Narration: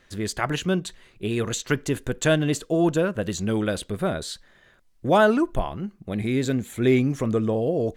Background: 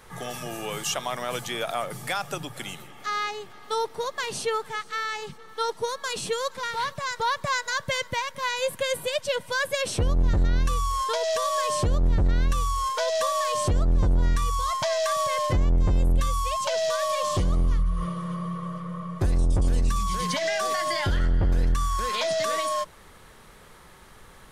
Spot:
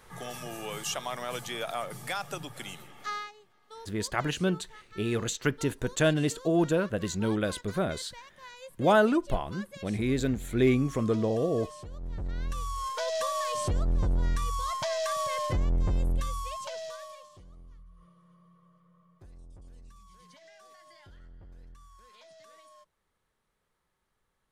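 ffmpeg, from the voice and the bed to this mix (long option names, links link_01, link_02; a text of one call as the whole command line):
ffmpeg -i stem1.wav -i stem2.wav -filter_complex "[0:a]adelay=3750,volume=-4dB[link_01];[1:a]volume=9.5dB,afade=type=out:start_time=3.09:duration=0.23:silence=0.177828,afade=type=in:start_time=11.93:duration=1.18:silence=0.188365,afade=type=out:start_time=15.94:duration=1.35:silence=0.0668344[link_02];[link_01][link_02]amix=inputs=2:normalize=0" out.wav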